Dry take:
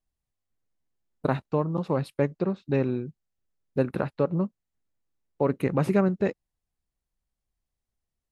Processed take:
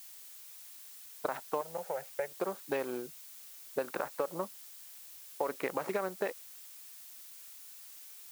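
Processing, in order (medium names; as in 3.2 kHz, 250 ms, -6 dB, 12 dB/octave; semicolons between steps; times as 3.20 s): local Wiener filter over 15 samples; Chebyshev high-pass 740 Hz, order 2; peak limiter -22 dBFS, peak gain reduction 7.5 dB; compression, threshold -37 dBFS, peak gain reduction 9 dB; 1.61–2.28 s: static phaser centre 1.1 kHz, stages 6; added noise blue -58 dBFS; trim +7 dB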